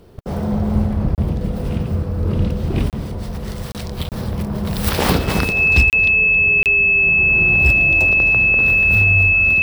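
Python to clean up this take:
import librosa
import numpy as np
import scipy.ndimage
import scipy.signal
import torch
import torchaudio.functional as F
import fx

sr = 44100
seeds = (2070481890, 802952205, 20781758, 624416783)

y = fx.fix_declip(x, sr, threshold_db=-5.5)
y = fx.notch(y, sr, hz=2600.0, q=30.0)
y = fx.fix_interpolate(y, sr, at_s=(1.15, 2.9, 3.72, 4.09, 5.9, 6.63), length_ms=28.0)
y = fx.fix_echo_inverse(y, sr, delay_ms=270, level_db=-18.0)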